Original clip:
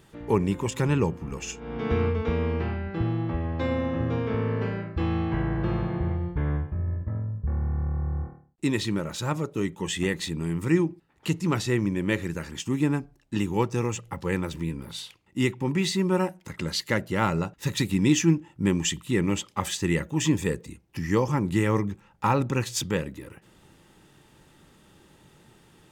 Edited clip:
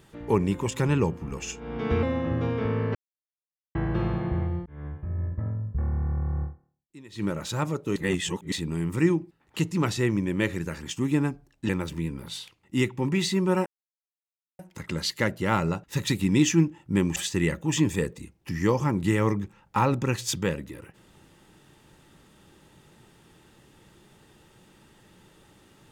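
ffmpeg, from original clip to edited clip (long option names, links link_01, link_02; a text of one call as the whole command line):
ffmpeg -i in.wav -filter_complex "[0:a]asplit=12[link_01][link_02][link_03][link_04][link_05][link_06][link_07][link_08][link_09][link_10][link_11][link_12];[link_01]atrim=end=2.032[link_13];[link_02]atrim=start=3.718:end=4.64,asetpts=PTS-STARTPTS,afade=type=out:start_time=0.918:duration=0.004:curve=hsin[link_14];[link_03]atrim=start=4.64:end=5.44,asetpts=PTS-STARTPTS,volume=0[link_15];[link_04]atrim=start=5.44:end=6.35,asetpts=PTS-STARTPTS,afade=type=in:duration=0.004:curve=hsin,afade=type=out:start_time=0.906:duration=0.004:curve=hsin[link_16];[link_05]atrim=start=6.35:end=8.27,asetpts=PTS-STARTPTS,afade=type=in:duration=0.6,afade=type=out:start_time=1.77:duration=0.15:curve=qua:silence=0.0841395[link_17];[link_06]atrim=start=8.27:end=8.78,asetpts=PTS-STARTPTS,volume=-21.5dB[link_18];[link_07]atrim=start=8.78:end=9.652,asetpts=PTS-STARTPTS,afade=type=in:duration=0.15:curve=qua:silence=0.0841395[link_19];[link_08]atrim=start=9.648:end=10.212,asetpts=PTS-STARTPTS,areverse[link_20];[link_09]atrim=start=10.208:end=13.382[link_21];[link_10]atrim=start=14.318:end=16.29,asetpts=PTS-STARTPTS,afade=type=out:start_time=1.968:duration=0.004:curve=hsin,apad=pad_dur=0.93[link_22];[link_11]atrim=start=16.29:end=18.862,asetpts=PTS-STARTPTS,afade=type=in:duration=0.004:curve=hsin[link_23];[link_12]atrim=start=19.638[link_24];[link_14][link_15][link_16][link_17][link_18][link_19]concat=n=6:v=0:a=1[link_25];[link_13][link_25]acrossfade=duration=0.004:curve1=hsin:curve2=hsin[link_26];[link_26][link_20]acrossfade=duration=0.004:curve1=hsin:curve2=hsin[link_27];[link_27][link_21]acrossfade=duration=0.004:curve1=hsin:curve2=hsin[link_28];[link_22][link_23]concat=n=2:v=0:a=1[link_29];[link_28][link_29]acrossfade=duration=0.004:curve1=hsin:curve2=hsin[link_30];[link_30][link_24]acrossfade=duration=0.004:curve1=hsin:curve2=hsin" out.wav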